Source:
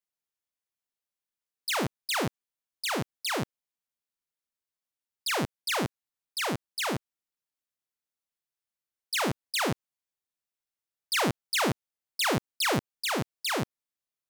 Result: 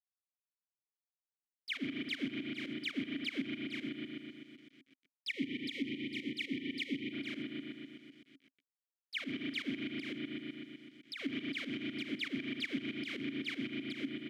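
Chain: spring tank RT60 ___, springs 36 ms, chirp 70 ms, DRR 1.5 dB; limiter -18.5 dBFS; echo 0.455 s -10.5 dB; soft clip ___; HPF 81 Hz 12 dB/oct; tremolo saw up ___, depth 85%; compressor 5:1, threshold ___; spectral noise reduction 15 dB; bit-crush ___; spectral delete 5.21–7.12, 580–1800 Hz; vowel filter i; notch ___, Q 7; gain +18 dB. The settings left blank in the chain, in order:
2.1 s, -31.5 dBFS, 7.9 Hz, -43 dBFS, 11-bit, 870 Hz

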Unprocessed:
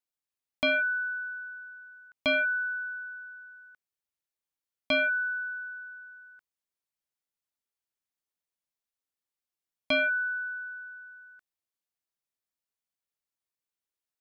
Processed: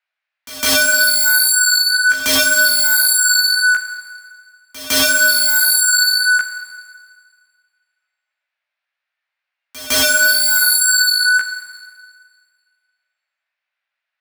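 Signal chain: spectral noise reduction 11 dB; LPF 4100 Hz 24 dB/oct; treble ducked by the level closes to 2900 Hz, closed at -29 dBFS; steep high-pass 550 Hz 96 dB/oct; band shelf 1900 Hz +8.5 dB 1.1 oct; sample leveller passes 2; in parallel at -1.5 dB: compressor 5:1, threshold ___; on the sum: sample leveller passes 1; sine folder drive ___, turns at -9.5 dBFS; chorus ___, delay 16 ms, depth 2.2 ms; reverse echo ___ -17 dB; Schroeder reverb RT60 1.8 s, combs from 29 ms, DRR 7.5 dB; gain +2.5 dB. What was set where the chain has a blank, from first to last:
-33 dBFS, 20 dB, 1.9 Hz, 0.157 s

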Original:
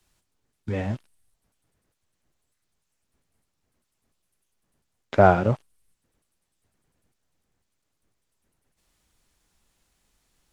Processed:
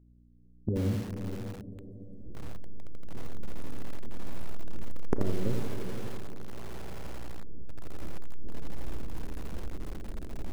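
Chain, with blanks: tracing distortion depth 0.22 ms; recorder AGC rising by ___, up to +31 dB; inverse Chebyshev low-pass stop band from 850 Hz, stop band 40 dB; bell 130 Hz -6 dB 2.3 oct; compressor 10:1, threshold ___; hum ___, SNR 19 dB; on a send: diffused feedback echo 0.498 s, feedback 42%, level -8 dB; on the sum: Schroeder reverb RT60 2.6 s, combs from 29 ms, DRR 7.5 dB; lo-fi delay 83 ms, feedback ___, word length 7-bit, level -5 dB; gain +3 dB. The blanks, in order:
14 dB/s, -30 dBFS, 60 Hz, 35%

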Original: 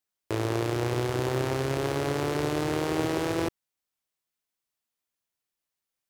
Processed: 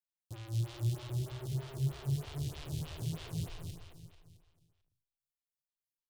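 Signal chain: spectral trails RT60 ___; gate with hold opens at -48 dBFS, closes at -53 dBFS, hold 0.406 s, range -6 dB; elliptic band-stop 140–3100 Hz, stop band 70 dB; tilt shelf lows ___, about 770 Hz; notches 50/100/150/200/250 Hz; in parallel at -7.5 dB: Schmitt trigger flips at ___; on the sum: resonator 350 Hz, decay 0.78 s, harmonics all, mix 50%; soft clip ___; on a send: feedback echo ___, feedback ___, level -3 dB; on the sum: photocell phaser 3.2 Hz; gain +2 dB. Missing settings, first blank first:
0.59 s, +4 dB, -36 dBFS, -30.5 dBFS, 0.221 s, 48%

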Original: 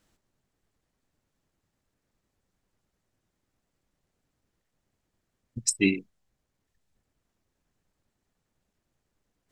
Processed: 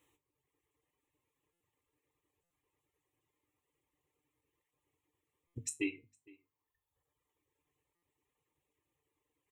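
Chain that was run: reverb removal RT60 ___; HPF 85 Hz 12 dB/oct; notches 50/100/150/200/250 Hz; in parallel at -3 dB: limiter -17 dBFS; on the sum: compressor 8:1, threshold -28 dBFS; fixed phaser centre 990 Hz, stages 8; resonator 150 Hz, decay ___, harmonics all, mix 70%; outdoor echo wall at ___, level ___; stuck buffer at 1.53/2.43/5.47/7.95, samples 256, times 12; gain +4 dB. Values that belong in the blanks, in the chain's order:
1.2 s, 0.23 s, 79 m, -24 dB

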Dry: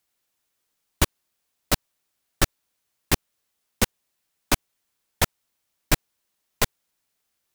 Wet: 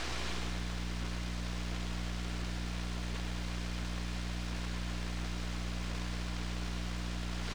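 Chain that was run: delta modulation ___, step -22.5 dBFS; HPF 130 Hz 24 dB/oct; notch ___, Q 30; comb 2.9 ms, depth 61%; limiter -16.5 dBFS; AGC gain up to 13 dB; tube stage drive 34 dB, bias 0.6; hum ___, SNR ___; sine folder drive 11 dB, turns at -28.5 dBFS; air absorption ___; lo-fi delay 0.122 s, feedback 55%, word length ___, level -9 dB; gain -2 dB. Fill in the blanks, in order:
32 kbps, 2700 Hz, 60 Hz, 11 dB, 130 m, 10-bit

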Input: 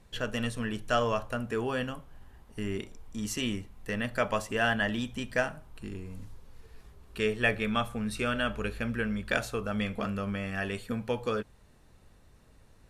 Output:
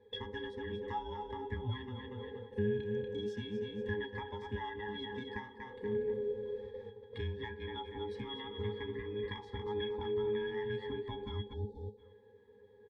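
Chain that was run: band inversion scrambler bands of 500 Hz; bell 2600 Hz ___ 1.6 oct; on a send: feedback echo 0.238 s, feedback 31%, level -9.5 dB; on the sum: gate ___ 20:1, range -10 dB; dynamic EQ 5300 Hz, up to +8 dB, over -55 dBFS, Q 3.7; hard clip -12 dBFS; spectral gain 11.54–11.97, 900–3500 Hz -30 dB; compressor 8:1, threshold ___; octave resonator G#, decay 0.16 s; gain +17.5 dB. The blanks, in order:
+7 dB, -49 dBFS, -41 dBFS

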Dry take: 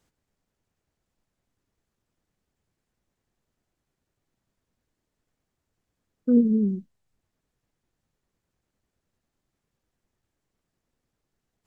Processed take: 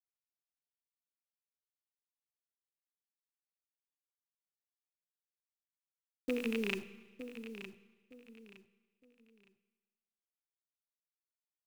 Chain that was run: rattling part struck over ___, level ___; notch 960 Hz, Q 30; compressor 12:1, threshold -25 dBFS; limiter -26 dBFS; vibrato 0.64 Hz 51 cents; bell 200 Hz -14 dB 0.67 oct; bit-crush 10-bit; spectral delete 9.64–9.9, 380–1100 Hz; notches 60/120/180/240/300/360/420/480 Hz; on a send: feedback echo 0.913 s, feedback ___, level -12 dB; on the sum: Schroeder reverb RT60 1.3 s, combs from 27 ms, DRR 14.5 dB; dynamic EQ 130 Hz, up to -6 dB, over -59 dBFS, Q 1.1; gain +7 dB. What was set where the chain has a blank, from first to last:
-26 dBFS, -20 dBFS, 28%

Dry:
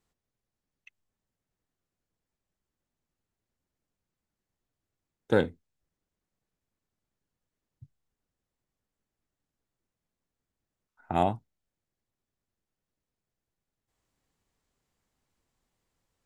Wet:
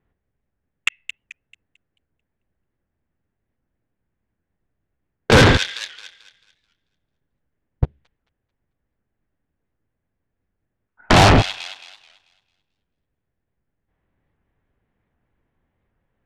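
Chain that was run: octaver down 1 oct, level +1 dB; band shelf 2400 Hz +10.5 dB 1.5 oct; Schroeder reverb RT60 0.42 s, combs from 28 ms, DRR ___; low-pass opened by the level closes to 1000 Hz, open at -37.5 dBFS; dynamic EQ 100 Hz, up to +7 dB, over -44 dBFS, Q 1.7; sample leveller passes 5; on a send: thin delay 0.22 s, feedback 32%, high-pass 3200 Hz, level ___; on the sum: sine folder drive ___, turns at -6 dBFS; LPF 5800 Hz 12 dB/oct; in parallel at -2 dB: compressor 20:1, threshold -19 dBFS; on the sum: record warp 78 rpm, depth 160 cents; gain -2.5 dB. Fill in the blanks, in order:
14 dB, -13 dB, 11 dB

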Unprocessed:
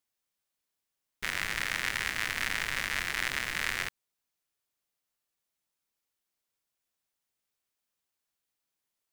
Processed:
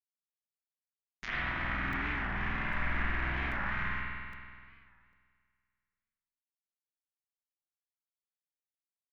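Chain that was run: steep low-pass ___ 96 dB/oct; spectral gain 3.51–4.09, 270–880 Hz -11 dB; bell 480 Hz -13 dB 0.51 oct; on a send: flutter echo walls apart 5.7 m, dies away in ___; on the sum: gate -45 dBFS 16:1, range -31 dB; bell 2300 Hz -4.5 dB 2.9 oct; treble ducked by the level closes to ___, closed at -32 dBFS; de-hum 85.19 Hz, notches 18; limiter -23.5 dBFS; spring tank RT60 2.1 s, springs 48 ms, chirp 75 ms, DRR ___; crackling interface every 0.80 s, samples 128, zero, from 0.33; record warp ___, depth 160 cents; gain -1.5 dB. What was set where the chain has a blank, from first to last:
6800 Hz, 0.34 s, 1300 Hz, -9 dB, 45 rpm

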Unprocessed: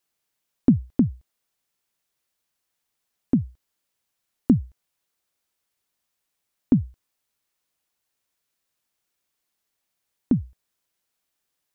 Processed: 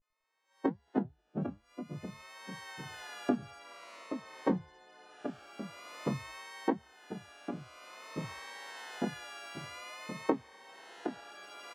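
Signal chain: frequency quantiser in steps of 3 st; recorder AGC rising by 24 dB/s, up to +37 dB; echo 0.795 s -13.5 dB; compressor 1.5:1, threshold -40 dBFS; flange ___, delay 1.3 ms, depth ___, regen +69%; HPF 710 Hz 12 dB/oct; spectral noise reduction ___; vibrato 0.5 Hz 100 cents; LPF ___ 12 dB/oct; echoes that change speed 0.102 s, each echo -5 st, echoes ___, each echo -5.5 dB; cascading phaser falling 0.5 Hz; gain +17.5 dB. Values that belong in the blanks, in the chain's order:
1 Hz, 9.2 ms, 11 dB, 1300 Hz, 2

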